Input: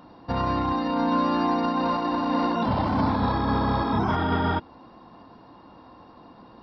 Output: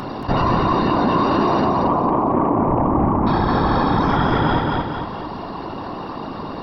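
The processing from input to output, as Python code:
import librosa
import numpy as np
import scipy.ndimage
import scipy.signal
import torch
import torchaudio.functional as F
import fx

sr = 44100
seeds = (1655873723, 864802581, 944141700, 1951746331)

p1 = fx.steep_lowpass(x, sr, hz=1200.0, slope=48, at=(1.64, 3.27))
p2 = fx.rider(p1, sr, range_db=10, speed_s=0.5)
p3 = p1 + (p2 * 10.0 ** (0.5 / 20.0))
p4 = 10.0 ** (-7.5 / 20.0) * np.tanh(p3 / 10.0 ** (-7.5 / 20.0))
p5 = fx.whisperise(p4, sr, seeds[0])
p6 = fx.echo_feedback(p5, sr, ms=227, feedback_pct=28, wet_db=-5)
p7 = fx.env_flatten(p6, sr, amount_pct=50)
y = p7 * 10.0 ** (-1.5 / 20.0)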